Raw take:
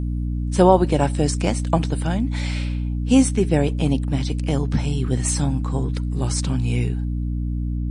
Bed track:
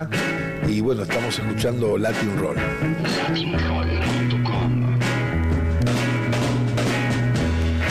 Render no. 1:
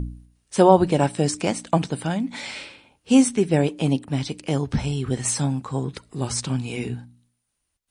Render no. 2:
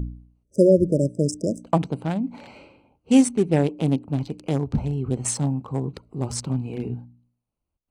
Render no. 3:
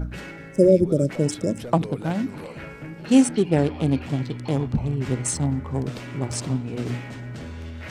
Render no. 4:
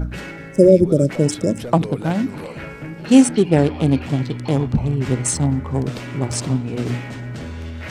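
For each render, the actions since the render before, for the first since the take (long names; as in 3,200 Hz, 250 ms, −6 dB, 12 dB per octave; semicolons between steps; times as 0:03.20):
hum removal 60 Hz, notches 5
adaptive Wiener filter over 25 samples; 0:00.43–0:01.64: time-frequency box erased 650–4,900 Hz
mix in bed track −14.5 dB
level +5 dB; brickwall limiter −1 dBFS, peak gain reduction 1.5 dB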